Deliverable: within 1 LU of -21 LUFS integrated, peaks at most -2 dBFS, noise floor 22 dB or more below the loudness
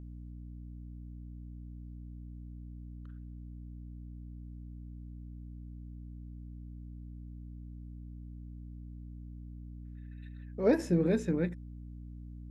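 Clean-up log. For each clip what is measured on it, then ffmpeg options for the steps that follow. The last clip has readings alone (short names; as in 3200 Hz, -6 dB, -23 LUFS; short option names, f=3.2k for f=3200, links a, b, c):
hum 60 Hz; harmonics up to 300 Hz; hum level -43 dBFS; loudness -39.5 LUFS; peak -15.0 dBFS; loudness target -21.0 LUFS
-> -af "bandreject=f=60:t=h:w=6,bandreject=f=120:t=h:w=6,bandreject=f=180:t=h:w=6,bandreject=f=240:t=h:w=6,bandreject=f=300:t=h:w=6"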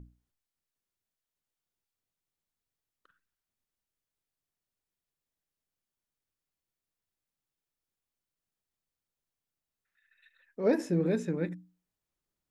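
hum none; loudness -30.5 LUFS; peak -15.5 dBFS; loudness target -21.0 LUFS
-> -af "volume=9.5dB"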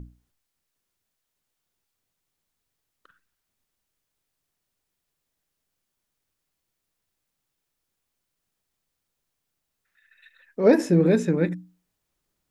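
loudness -21.0 LUFS; peak -6.0 dBFS; noise floor -81 dBFS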